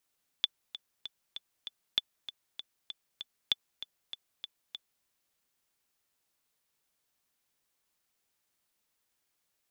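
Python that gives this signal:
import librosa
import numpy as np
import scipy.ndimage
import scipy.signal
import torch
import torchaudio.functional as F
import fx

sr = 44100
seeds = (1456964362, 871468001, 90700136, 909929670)

y = fx.click_track(sr, bpm=195, beats=5, bars=3, hz=3480.0, accent_db=14.0, level_db=-12.5)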